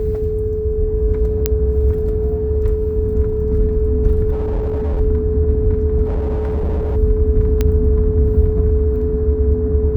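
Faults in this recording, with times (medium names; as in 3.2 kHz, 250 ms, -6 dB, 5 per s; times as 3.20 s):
whine 430 Hz -19 dBFS
1.46 s: pop -1 dBFS
4.31–5.01 s: clipped -15.5 dBFS
6.05–6.97 s: clipped -15.5 dBFS
7.61 s: pop -5 dBFS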